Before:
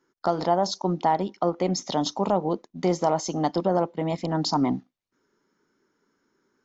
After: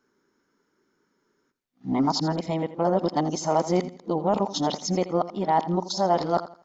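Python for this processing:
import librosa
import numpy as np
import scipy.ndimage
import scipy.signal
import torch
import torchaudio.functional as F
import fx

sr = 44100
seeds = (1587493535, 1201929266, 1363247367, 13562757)

y = x[::-1].copy()
y = fx.echo_feedback(y, sr, ms=83, feedback_pct=30, wet_db=-14.5)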